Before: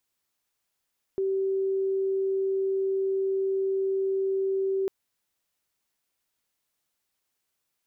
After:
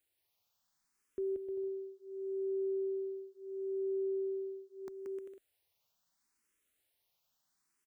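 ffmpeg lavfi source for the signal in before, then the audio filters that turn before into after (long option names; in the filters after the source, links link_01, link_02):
-f lavfi -i "sine=frequency=386:duration=3.7:sample_rate=44100,volume=-5.44dB"
-filter_complex "[0:a]alimiter=level_in=7.5dB:limit=-24dB:level=0:latency=1:release=428,volume=-7.5dB,aecho=1:1:180|306|394.2|455.9|499.2:0.631|0.398|0.251|0.158|0.1,asplit=2[link_01][link_02];[link_02]afreqshift=0.74[link_03];[link_01][link_03]amix=inputs=2:normalize=1"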